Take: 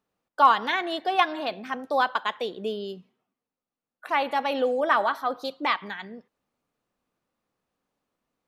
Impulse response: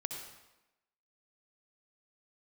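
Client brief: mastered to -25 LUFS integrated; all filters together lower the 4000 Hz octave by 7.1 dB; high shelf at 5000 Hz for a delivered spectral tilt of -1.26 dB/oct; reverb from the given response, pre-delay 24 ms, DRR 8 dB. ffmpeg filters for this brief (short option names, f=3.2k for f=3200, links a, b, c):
-filter_complex "[0:a]equalizer=f=4k:t=o:g=-6,highshelf=f=5k:g=-9,asplit=2[a][b];[1:a]atrim=start_sample=2205,adelay=24[c];[b][c]afir=irnorm=-1:irlink=0,volume=-8.5dB[d];[a][d]amix=inputs=2:normalize=0,volume=0.5dB"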